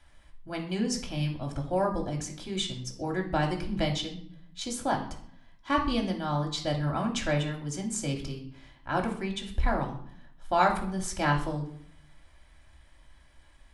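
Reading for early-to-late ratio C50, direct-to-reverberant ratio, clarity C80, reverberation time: 9.0 dB, 0.5 dB, 12.5 dB, 0.60 s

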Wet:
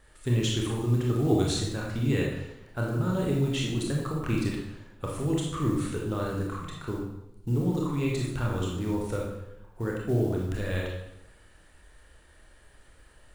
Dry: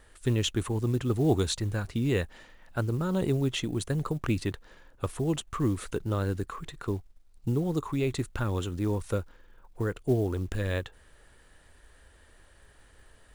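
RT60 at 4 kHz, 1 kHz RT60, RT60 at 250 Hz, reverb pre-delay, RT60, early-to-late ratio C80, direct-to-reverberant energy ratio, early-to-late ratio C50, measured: 0.70 s, 0.85 s, 0.95 s, 24 ms, 0.90 s, 5.0 dB, -2.5 dB, 1.5 dB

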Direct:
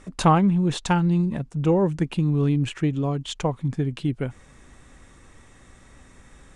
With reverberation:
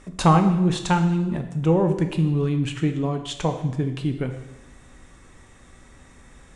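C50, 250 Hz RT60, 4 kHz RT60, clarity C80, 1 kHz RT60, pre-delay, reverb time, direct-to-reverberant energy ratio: 8.5 dB, 0.95 s, 0.90 s, 11.0 dB, 0.95 s, 5 ms, 0.95 s, 5.5 dB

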